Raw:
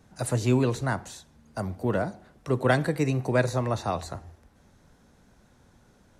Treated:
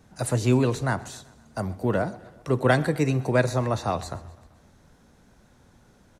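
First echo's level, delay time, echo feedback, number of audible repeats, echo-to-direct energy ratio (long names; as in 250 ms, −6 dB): −21.0 dB, 128 ms, 58%, 3, −19.0 dB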